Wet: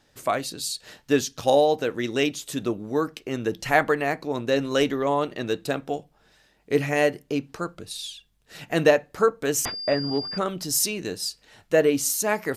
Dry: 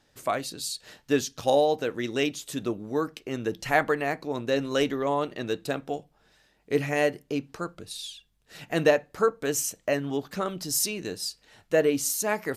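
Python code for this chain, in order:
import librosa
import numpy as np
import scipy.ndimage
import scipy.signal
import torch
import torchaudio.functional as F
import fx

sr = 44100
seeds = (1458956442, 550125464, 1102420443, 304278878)

y = fx.pwm(x, sr, carrier_hz=4800.0, at=(9.65, 10.38))
y = F.gain(torch.from_numpy(y), 3.0).numpy()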